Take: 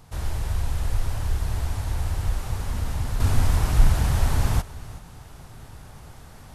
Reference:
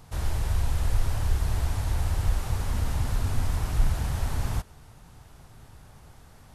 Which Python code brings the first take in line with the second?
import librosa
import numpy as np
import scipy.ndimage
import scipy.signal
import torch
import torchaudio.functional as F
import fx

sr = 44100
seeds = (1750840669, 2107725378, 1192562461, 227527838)

y = fx.fix_echo_inverse(x, sr, delay_ms=372, level_db=-18.0)
y = fx.gain(y, sr, db=fx.steps((0.0, 0.0), (3.2, -6.5)))